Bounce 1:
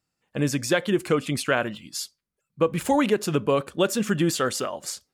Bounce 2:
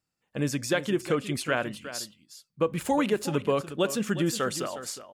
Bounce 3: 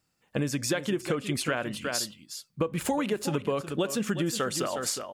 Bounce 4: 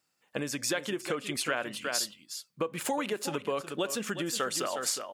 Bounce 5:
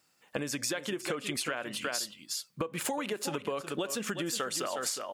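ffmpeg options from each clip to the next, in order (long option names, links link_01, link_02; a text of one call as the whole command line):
ffmpeg -i in.wav -af "aecho=1:1:362:0.224,volume=-4dB" out.wav
ffmpeg -i in.wav -af "acompressor=threshold=-34dB:ratio=6,volume=8.5dB" out.wav
ffmpeg -i in.wav -af "highpass=frequency=490:poles=1" out.wav
ffmpeg -i in.wav -af "acompressor=threshold=-39dB:ratio=4,volume=7dB" out.wav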